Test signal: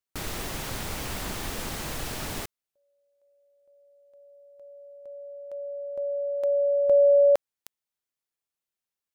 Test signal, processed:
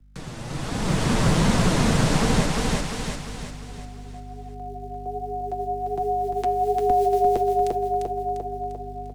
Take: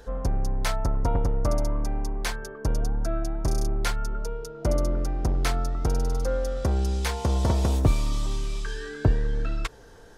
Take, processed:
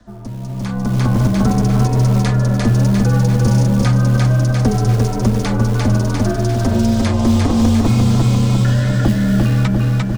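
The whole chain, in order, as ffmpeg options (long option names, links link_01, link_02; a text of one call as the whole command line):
ffmpeg -i in.wav -filter_complex "[0:a]aeval=exprs='val(0)*sin(2*PI*160*n/s)':channel_layout=same,lowpass=frequency=9300:width=0.5412,lowpass=frequency=9300:width=1.3066,flanger=delay=4:depth=4.8:regen=20:speed=1.3:shape=sinusoidal,aeval=exprs='val(0)+0.00126*(sin(2*PI*50*n/s)+sin(2*PI*2*50*n/s)/2+sin(2*PI*3*50*n/s)/3+sin(2*PI*4*50*n/s)/4+sin(2*PI*5*50*n/s)/5)':channel_layout=same,aecho=1:1:348|696|1044|1392|1740|2088:0.631|0.303|0.145|0.0698|0.0335|0.0161,acrossover=split=270[link_01][link_02];[link_01]acrusher=bits=6:mode=log:mix=0:aa=0.000001[link_03];[link_03][link_02]amix=inputs=2:normalize=0,acrossover=split=84|310|1400[link_04][link_05][link_06][link_07];[link_04]acompressor=threshold=-47dB:ratio=4[link_08];[link_05]acompressor=threshold=-34dB:ratio=4[link_09];[link_06]acompressor=threshold=-43dB:ratio=4[link_10];[link_07]acompressor=threshold=-48dB:ratio=4[link_11];[link_08][link_09][link_10][link_11]amix=inputs=4:normalize=0,lowshelf=frequency=100:gain=7.5,bandreject=frequency=101.9:width_type=h:width=4,bandreject=frequency=203.8:width_type=h:width=4,bandreject=frequency=305.7:width_type=h:width=4,bandreject=frequency=407.6:width_type=h:width=4,bandreject=frequency=509.5:width_type=h:width=4,bandreject=frequency=611.4:width_type=h:width=4,bandreject=frequency=713.3:width_type=h:width=4,bandreject=frequency=815.2:width_type=h:width=4,bandreject=frequency=917.1:width_type=h:width=4,bandreject=frequency=1019:width_type=h:width=4,bandreject=frequency=1120.9:width_type=h:width=4,bandreject=frequency=1222.8:width_type=h:width=4,bandreject=frequency=1324.7:width_type=h:width=4,bandreject=frequency=1426.6:width_type=h:width=4,bandreject=frequency=1528.5:width_type=h:width=4,bandreject=frequency=1630.4:width_type=h:width=4,bandreject=frequency=1732.3:width_type=h:width=4,bandreject=frequency=1834.2:width_type=h:width=4,bandreject=frequency=1936.1:width_type=h:width=4,bandreject=frequency=2038:width_type=h:width=4,bandreject=frequency=2139.9:width_type=h:width=4,bandreject=frequency=2241.8:width_type=h:width=4,bandreject=frequency=2343.7:width_type=h:width=4,bandreject=frequency=2445.6:width_type=h:width=4,bandreject=frequency=2547.5:width_type=h:width=4,bandreject=frequency=2649.4:width_type=h:width=4,bandreject=frequency=2751.3:width_type=h:width=4,bandreject=frequency=2853.2:width_type=h:width=4,bandreject=frequency=2955.1:width_type=h:width=4,bandreject=frequency=3057:width_type=h:width=4,dynaudnorm=framelen=100:gausssize=17:maxgain=16dB,volume=3dB" out.wav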